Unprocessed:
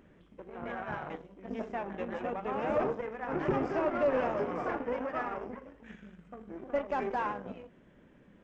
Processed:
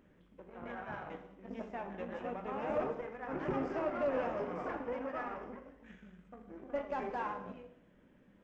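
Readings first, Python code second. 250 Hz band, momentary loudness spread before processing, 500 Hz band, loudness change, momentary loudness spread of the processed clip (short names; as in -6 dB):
-5.0 dB, 19 LU, -5.0 dB, -5.0 dB, 20 LU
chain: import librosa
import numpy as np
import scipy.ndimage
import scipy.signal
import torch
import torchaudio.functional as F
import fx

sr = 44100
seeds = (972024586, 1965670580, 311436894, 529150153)

y = fx.rev_gated(x, sr, seeds[0], gate_ms=310, shape='falling', drr_db=7.0)
y = F.gain(torch.from_numpy(y), -6.0).numpy()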